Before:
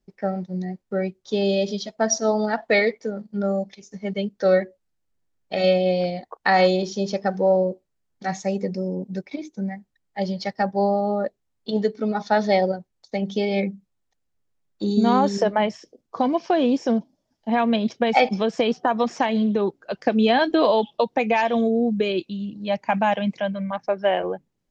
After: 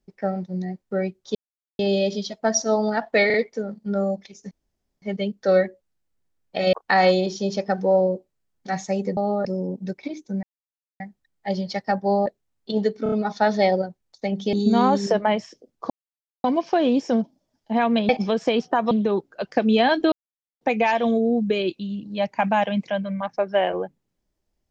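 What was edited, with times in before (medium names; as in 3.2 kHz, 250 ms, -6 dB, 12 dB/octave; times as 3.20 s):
1.35 s: insert silence 0.44 s
2.82 s: stutter 0.04 s, 3 plays
3.99 s: insert room tone 0.51 s
5.70–6.29 s: delete
9.71 s: insert silence 0.57 s
10.97–11.25 s: move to 8.73 s
12.02 s: stutter 0.03 s, 4 plays
13.43–14.84 s: delete
16.21 s: insert silence 0.54 s
17.86–18.21 s: delete
19.03–19.41 s: delete
20.62–21.11 s: mute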